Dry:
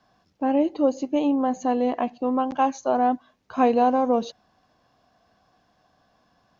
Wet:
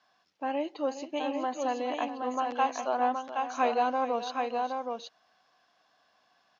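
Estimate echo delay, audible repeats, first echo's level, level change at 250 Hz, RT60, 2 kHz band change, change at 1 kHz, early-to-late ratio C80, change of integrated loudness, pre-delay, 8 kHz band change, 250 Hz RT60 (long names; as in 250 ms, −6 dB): 419 ms, 2, −12.5 dB, −13.0 dB, no reverb audible, +0.5 dB, −4.5 dB, no reverb audible, −8.0 dB, no reverb audible, can't be measured, no reverb audible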